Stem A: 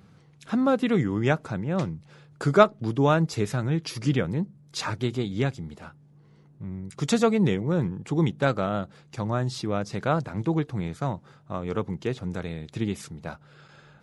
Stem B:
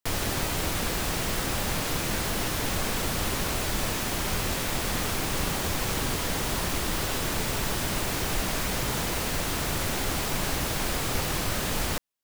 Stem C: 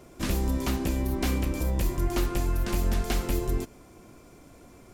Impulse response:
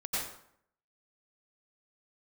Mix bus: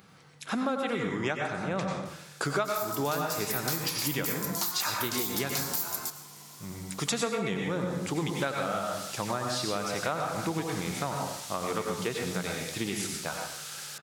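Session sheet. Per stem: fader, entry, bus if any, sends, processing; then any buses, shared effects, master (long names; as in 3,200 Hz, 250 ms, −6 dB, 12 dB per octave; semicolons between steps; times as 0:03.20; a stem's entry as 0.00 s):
+1.5 dB, 0.00 s, send −3.5 dB, high-shelf EQ 2,900 Hz −9.5 dB
0:07.82 −22.5 dB → 0:08.39 −10 dB, 2.00 s, no send, low-pass filter 5,500 Hz 12 dB per octave; first difference
−5.0 dB, 2.45 s, send −16 dB, drawn EQ curve 190 Hz 0 dB, 480 Hz −10 dB, 900 Hz +10 dB, 2,700 Hz −7 dB, 4,400 Hz +7 dB, 11,000 Hz +2 dB, 15,000 Hz +8 dB; tape wow and flutter 55 cents; high-pass filter 140 Hz 12 dB per octave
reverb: on, RT60 0.65 s, pre-delay 82 ms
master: spectral tilt +4 dB per octave; downward compressor 6 to 1, threshold −27 dBFS, peak gain reduction 18 dB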